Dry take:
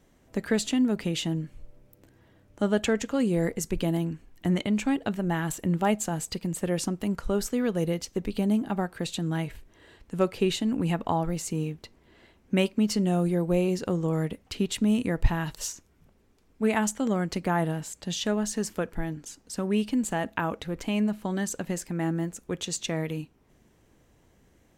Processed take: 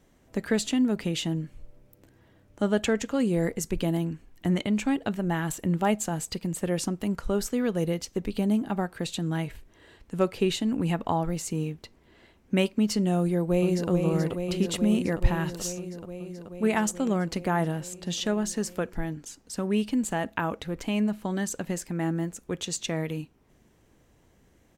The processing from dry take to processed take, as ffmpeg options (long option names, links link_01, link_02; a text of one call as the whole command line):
ffmpeg -i in.wav -filter_complex "[0:a]asplit=2[link_01][link_02];[link_02]afade=type=in:start_time=13.19:duration=0.01,afade=type=out:start_time=13.9:duration=0.01,aecho=0:1:430|860|1290|1720|2150|2580|3010|3440|3870|4300|4730|5160:0.530884|0.424708|0.339766|0.271813|0.21745|0.17396|0.139168|0.111335|0.0890676|0.0712541|0.0570033|0.0456026[link_03];[link_01][link_03]amix=inputs=2:normalize=0" out.wav